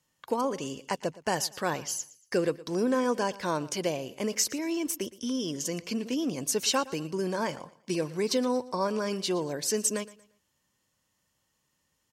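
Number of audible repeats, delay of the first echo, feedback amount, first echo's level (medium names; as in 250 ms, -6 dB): 2, 116 ms, 33%, -19.0 dB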